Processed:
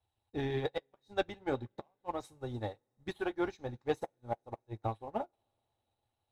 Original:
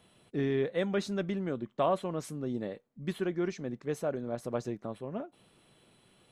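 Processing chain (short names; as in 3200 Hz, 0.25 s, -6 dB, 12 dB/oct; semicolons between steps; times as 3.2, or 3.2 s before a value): harmonic-percussive split percussive +6 dB; resonant low shelf 130 Hz +10 dB, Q 3; small resonant body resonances 830/3800 Hz, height 18 dB, ringing for 35 ms; flipped gate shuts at -16 dBFS, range -28 dB; sample leveller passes 1; flange 0.42 Hz, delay 1.7 ms, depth 8.7 ms, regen -61%; reverb, pre-delay 3 ms, DRR 11.5 dB; upward expander 2.5:1, over -45 dBFS; gain +1 dB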